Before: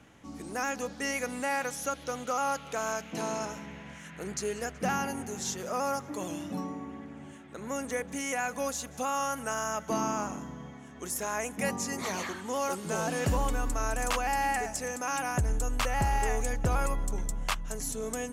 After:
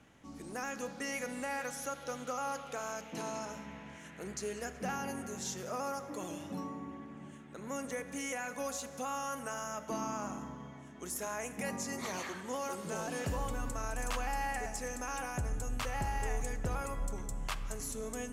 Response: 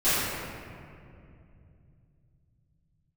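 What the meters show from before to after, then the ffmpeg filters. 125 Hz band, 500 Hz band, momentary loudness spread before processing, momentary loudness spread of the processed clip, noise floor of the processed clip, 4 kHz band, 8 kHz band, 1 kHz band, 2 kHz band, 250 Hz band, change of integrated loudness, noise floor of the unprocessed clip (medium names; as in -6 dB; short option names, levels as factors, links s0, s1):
-6.5 dB, -6.0 dB, 12 LU, 8 LU, -50 dBFS, -6.5 dB, -6.0 dB, -7.0 dB, -6.5 dB, -5.5 dB, -6.5 dB, -47 dBFS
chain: -filter_complex "[0:a]alimiter=limit=0.0708:level=0:latency=1,asplit=2[s0][s1];[1:a]atrim=start_sample=2205[s2];[s1][s2]afir=irnorm=-1:irlink=0,volume=0.0501[s3];[s0][s3]amix=inputs=2:normalize=0,volume=0.531"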